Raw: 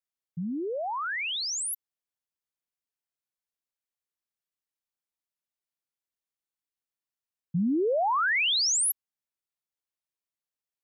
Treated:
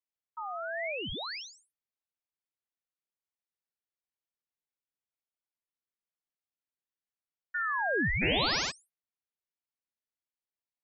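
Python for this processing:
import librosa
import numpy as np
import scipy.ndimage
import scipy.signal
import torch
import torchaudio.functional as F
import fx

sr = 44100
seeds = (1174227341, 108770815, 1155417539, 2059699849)

y = scipy.signal.sosfilt(scipy.signal.cheby2(4, 60, 11000.0, 'lowpass', fs=sr, output='sos'), x)
y = fx.peak_eq(y, sr, hz=720.0, db=4.0, octaves=1.2)
y = fx.room_flutter(y, sr, wall_m=11.2, rt60_s=1.4, at=(8.21, 8.7), fade=0.02)
y = fx.ring_lfo(y, sr, carrier_hz=1300.0, swing_pct=25, hz=0.93)
y = F.gain(torch.from_numpy(y), -3.5).numpy()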